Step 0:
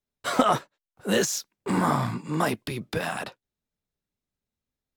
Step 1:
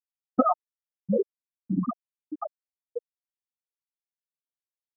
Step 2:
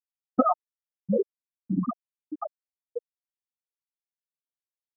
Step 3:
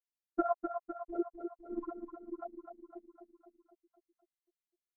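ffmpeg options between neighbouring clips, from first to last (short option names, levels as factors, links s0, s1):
-filter_complex "[0:a]highpass=f=120:p=1,afftfilt=real='re*gte(hypot(re,im),0.447)':imag='im*gte(hypot(re,im),0.447)':win_size=1024:overlap=0.75,asplit=2[s0][s1];[s1]acompressor=threshold=0.0251:ratio=6,volume=0.944[s2];[s0][s2]amix=inputs=2:normalize=0"
-af anull
-filter_complex "[0:a]afftfilt=real='hypot(re,im)*cos(PI*b)':imag='0':win_size=512:overlap=0.75,asplit=2[s0][s1];[s1]aecho=0:1:253|506|759|1012|1265|1518|1771:0.447|0.255|0.145|0.0827|0.0472|0.0269|0.0153[s2];[s0][s2]amix=inputs=2:normalize=0,volume=0.596"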